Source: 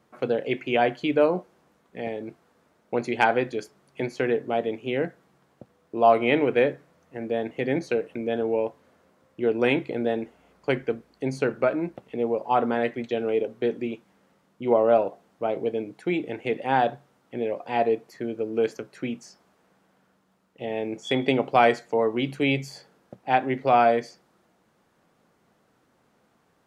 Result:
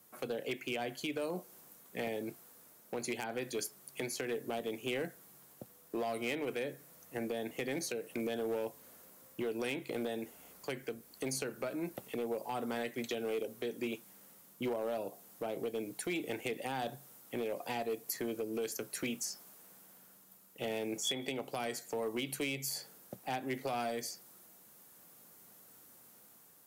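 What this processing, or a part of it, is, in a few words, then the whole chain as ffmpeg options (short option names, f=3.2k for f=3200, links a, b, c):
FM broadcast chain: -filter_complex "[0:a]highpass=74,dynaudnorm=f=410:g=5:m=4.5dB,acrossover=split=360|3900[a][b][c];[a]acompressor=threshold=-30dB:ratio=4[d];[b]acompressor=threshold=-27dB:ratio=4[e];[c]acompressor=threshold=-45dB:ratio=4[f];[d][e][f]amix=inputs=3:normalize=0,aemphasis=mode=production:type=50fm,alimiter=limit=-21dB:level=0:latency=1:release=376,asoftclip=type=hard:threshold=-24.5dB,lowpass=f=15k:w=0.5412,lowpass=f=15k:w=1.3066,aemphasis=mode=production:type=50fm,volume=-5.5dB"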